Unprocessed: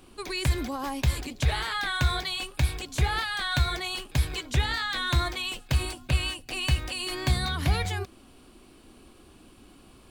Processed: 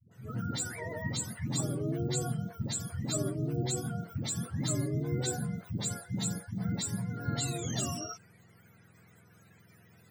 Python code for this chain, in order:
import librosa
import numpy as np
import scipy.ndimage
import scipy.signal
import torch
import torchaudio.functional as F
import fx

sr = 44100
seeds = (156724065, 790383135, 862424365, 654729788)

y = fx.octave_mirror(x, sr, pivot_hz=720.0)
y = fx.dispersion(y, sr, late='highs', ms=114.0, hz=340.0)
y = y * librosa.db_to_amplitude(-5.0)